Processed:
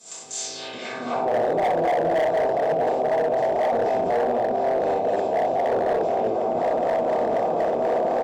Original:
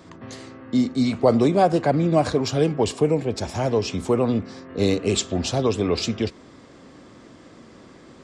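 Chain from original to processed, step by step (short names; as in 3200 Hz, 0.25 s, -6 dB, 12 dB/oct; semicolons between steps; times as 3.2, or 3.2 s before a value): per-bin compression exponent 0.4; recorder AGC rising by 28 dB/s; harmonic tremolo 4 Hz, depth 70%, crossover 420 Hz; loudspeakers at several distances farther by 21 m -3 dB, 71 m -8 dB; band-pass sweep 7900 Hz -> 660 Hz, 0.32–1.32; narrowing echo 0.691 s, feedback 75%, band-pass 460 Hz, level -21.5 dB; reverb RT60 0.40 s, pre-delay 4 ms, DRR -8.5 dB; hard clip -6 dBFS, distortion -12 dB; bell 870 Hz +5.5 dB 0.32 oct; limiter -7.5 dBFS, peak gain reduction 5.5 dB; gain -8.5 dB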